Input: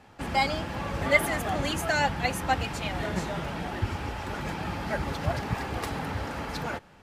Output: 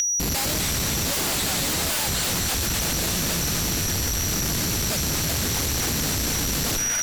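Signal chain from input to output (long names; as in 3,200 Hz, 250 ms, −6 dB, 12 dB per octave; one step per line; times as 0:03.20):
comparator with hysteresis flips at −31 dBFS
echo with a time of its own for lows and highs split 550 Hz, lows 97 ms, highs 252 ms, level −11.5 dB
steady tone 5,800 Hz −31 dBFS
flat-topped bell 2,300 Hz +13 dB
sine wavefolder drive 20 dB, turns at −9 dBFS
downward compressor 2 to 1, threshold −23 dBFS, peak gain reduction 6.5 dB
level −5.5 dB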